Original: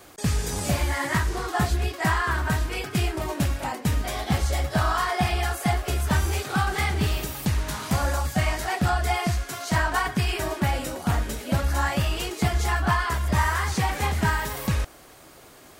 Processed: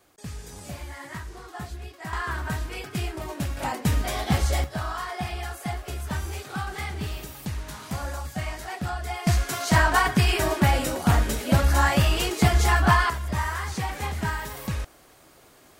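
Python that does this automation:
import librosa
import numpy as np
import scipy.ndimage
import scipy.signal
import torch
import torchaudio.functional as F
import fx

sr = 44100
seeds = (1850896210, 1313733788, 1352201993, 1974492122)

y = fx.gain(x, sr, db=fx.steps((0.0, -13.0), (2.13, -5.0), (3.57, 1.0), (4.64, -7.5), (9.27, 4.0), (13.1, -5.0)))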